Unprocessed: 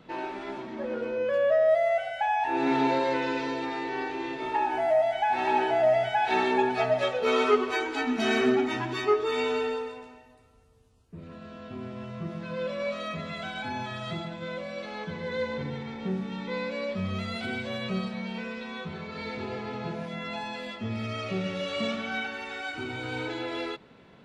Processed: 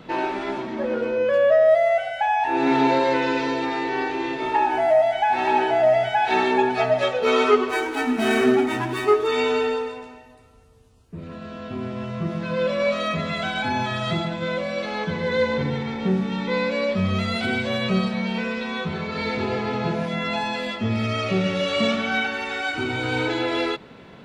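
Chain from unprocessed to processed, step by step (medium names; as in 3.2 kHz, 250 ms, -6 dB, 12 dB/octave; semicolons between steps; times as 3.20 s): 7.69–9.27 s: median filter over 9 samples; in parallel at +1.5 dB: gain riding within 5 dB 2 s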